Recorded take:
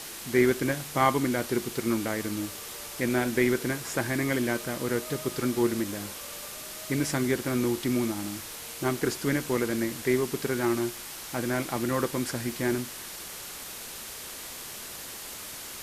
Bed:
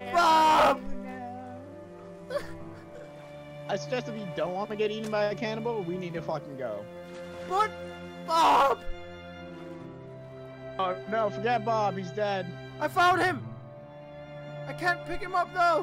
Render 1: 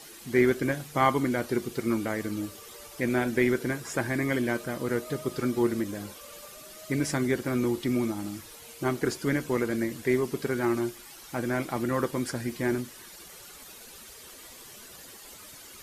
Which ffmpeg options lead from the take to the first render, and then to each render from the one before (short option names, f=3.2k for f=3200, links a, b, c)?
-af "afftdn=nr=11:nf=-41"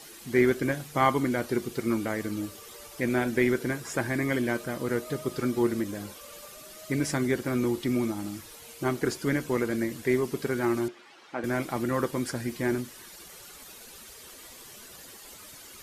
-filter_complex "[0:a]asettb=1/sr,asplit=3[a][b][c];[a]atrim=end=10.884[d];[b]atrim=start=10.88:end=11.44,asetpts=PTS-STARTPTS,afade=t=in:d=0.004:c=qsin,afade=t=out:st=0.556:d=0.004:c=qsin,highpass=280,lowpass=3.1k[e];[c]atrim=start=11.436[f];[d][e]acrossfade=d=0.004:c1=hsin:c2=qsin[g];[g][f]acrossfade=d=0.004:c1=qsin:c2=hsin"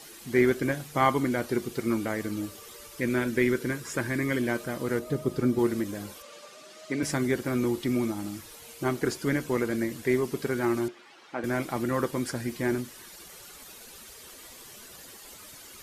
-filter_complex "[0:a]asettb=1/sr,asplit=3[a][b][c];[a]atrim=end=2.724[d];[b]atrim=start=2.72:end=4.41,asetpts=PTS-STARTPTS,afade=t=in:d=0.004:c=qsin,afade=t=out:st=1.686:d=0.004:c=qsin,equalizer=f=740:w=4.2:g=-10.5[e];[c]atrim=start=4.406[f];[d][e]acrossfade=d=0.004:c1=hsin:c2=qsin[g];[g][f]acrossfade=d=0.004:c1=qsin:c2=hsin,asettb=1/sr,asplit=3[h][i][j];[h]atrim=end=4.994[k];[i]atrim=start=4.99:end=5.59,asetpts=PTS-STARTPTS,afade=t=in:d=0.004:c=qsin,afade=t=out:st=0.596:d=0.004:c=qsin,tiltshelf=f=670:g=5[l];[j]atrim=start=5.586[m];[k][l]acrossfade=d=0.004:c1=hsin:c2=qsin[n];[n][m]acrossfade=d=0.004:c1=qsin:c2=hsin,asettb=1/sr,asplit=3[o][p][q];[o]atrim=end=6.224[r];[p]atrim=start=6.22:end=7.03,asetpts=PTS-STARTPTS,afade=t=in:d=0.004:c=qsin,afade=t=out:st=0.806:d=0.004:c=qsin,highpass=220,lowpass=6.3k[s];[q]atrim=start=7.026[t];[r][s]acrossfade=d=0.004:c1=hsin:c2=qsin[u];[u][t]acrossfade=d=0.004:c1=qsin:c2=hsin"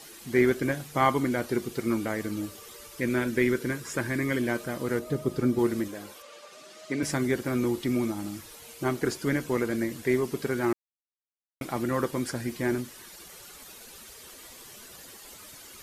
-filter_complex "[0:a]asettb=1/sr,asplit=3[a][b][c];[a]atrim=end=5.884[d];[b]atrim=start=5.88:end=6.52,asetpts=PTS-STARTPTS,afade=t=in:d=0.004:c=qsin,afade=t=out:st=0.636:d=0.004:c=qsin,bass=f=250:g=-10,treble=f=4k:g=-3[e];[c]atrim=start=6.516[f];[d][e]acrossfade=d=0.004:c1=hsin:c2=qsin[g];[g][f]acrossfade=d=0.004:c1=qsin:c2=hsin,asplit=3[h][i][j];[h]atrim=end=10.73,asetpts=PTS-STARTPTS,afade=t=out:st=10.726:d=0.004:c=hsin[k];[i]atrim=start=10.73:end=11.61,asetpts=PTS-STARTPTS,volume=0[l];[j]atrim=start=11.61,asetpts=PTS-STARTPTS,afade=t=in:d=0.004:c=hsin[m];[k][l][m]concat=n=3:v=0:a=1"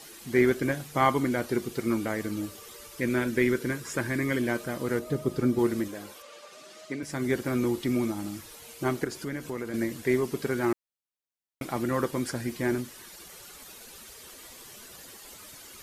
-filter_complex "[0:a]asettb=1/sr,asplit=3[a][b][c];[a]atrim=end=9.044[d];[b]atrim=start=9.04:end=9.74,asetpts=PTS-STARTPTS,afade=t=in:d=0.004:c=qsin,afade=t=out:st=0.696:d=0.004:c=qsin,acompressor=threshold=-35dB:ratio=2:attack=3.2:release=140:knee=1:detection=peak[e];[c]atrim=start=9.736[f];[d][e]acrossfade=d=0.004:c1=hsin:c2=qsin[g];[g][f]acrossfade=d=0.004:c1=qsin:c2=hsin,asplit=2[h][i];[h]atrim=end=7.06,asetpts=PTS-STARTPTS,afade=t=out:st=6.8:d=0.26:silence=0.316228[j];[i]atrim=start=7.06,asetpts=PTS-STARTPTS,afade=t=in:d=0.26:silence=0.316228[k];[j][k]concat=n=2:v=0:a=1"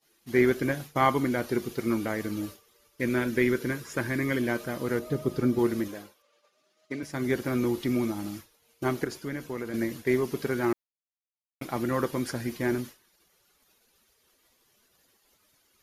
-af "equalizer=f=8.1k:w=5.9:g=-11,agate=range=-33dB:threshold=-35dB:ratio=3:detection=peak"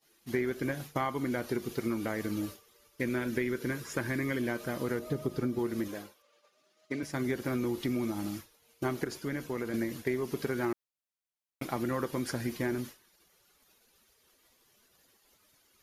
-af "acompressor=threshold=-28dB:ratio=6"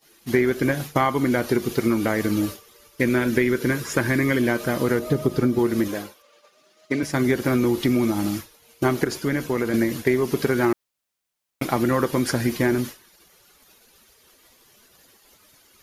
-af "volume=11.5dB"